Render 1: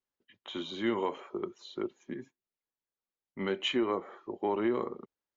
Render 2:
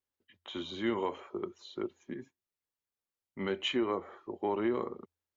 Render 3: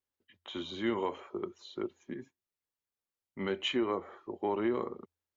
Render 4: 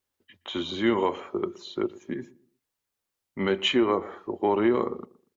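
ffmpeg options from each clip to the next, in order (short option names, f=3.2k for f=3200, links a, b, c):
-af "equalizer=f=86:t=o:w=0.24:g=15,volume=-1.5dB"
-af anull
-filter_complex "[0:a]asplit=2[a][b];[b]adelay=119,lowpass=f=1k:p=1,volume=-19dB,asplit=2[c][d];[d]adelay=119,lowpass=f=1k:p=1,volume=0.31,asplit=2[e][f];[f]adelay=119,lowpass=f=1k:p=1,volume=0.31[g];[a][c][e][g]amix=inputs=4:normalize=0,volume=8.5dB"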